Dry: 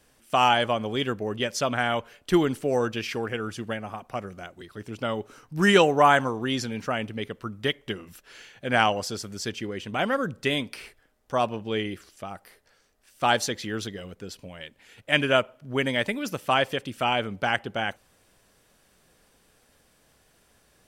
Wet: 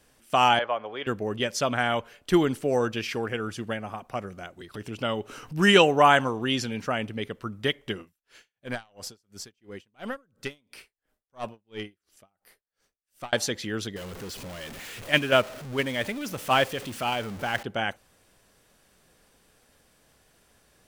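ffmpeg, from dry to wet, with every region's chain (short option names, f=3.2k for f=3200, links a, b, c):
-filter_complex "[0:a]asettb=1/sr,asplit=3[a][b][c];[a]atrim=end=0.594[d];[b]atrim=start=0.59:end=1.07,asetpts=PTS-STARTPTS,afade=t=in:d=0.004:c=qsin,afade=t=out:st=0.476:d=0.004:c=qsin,lowpass=f=5.4k:w=0.5412,lowpass=f=5.4k:w=1.3066,acrossover=split=470 2400:gain=0.1 1 0.178[e][f][g];[e][f][g]amix=inputs=3:normalize=0[h];[c]atrim=start=1.066[i];[d][h]acrossfade=d=0.004:c1=hsin:c2=qsin[j];[j][i]acrossfade=d=0.004:c1=qsin:c2=hsin,asettb=1/sr,asplit=3[k][l][m];[k]atrim=end=4.744[n];[l]atrim=start=4.74:end=6.76,asetpts=PTS-STARTPTS,afade=t=in:d=0.004:c=qsin,afade=t=out:st=2.016:d=0.004:c=qsin,equalizer=f=2.8k:t=o:w=0.36:g=6,acompressor=mode=upward:threshold=-32dB:ratio=2.5:attack=3.2:release=140:knee=2.83:detection=peak[o];[m]atrim=start=6.756[p];[n][o]acrossfade=d=0.004:c1=hsin:c2=qsin[q];[q][p]acrossfade=d=0.004:c1=qsin:c2=hsin,asettb=1/sr,asplit=3[r][s][t];[r]atrim=end=8.024[u];[s]atrim=start=8.02:end=13.33,asetpts=PTS-STARTPTS,afade=t=in:d=0.004:c=qsin,afade=t=out:st=5.306:d=0.004:c=qsin,highshelf=f=11k:g=7,aeval=exprs='(tanh(3.16*val(0)+0.75)-tanh(0.75))/3.16':c=same,aeval=exprs='val(0)*pow(10,-36*(0.5-0.5*cos(2*PI*2.9*n/s))/20)':c=same[v];[t]atrim=start=13.326[w];[u][v]acrossfade=d=0.004:c1=hsin:c2=qsin[x];[x][w]acrossfade=d=0.004:c1=qsin:c2=hsin,asettb=1/sr,asplit=3[y][z][aa];[y]atrim=end=13.964[ab];[z]atrim=start=13.96:end=17.63,asetpts=PTS-STARTPTS,afade=t=in:d=0.004:c=qsin,afade=t=out:st=3.666:d=0.004:c=qsin,aeval=exprs='val(0)+0.5*0.0335*sgn(val(0))':c=same,agate=range=-6dB:threshold=-22dB:ratio=16:release=100:detection=peak[ac];[aa]atrim=start=17.626[ad];[ab][ac]acrossfade=d=0.004:c1=hsin:c2=qsin[ae];[ae][ad]acrossfade=d=0.004:c1=qsin:c2=hsin"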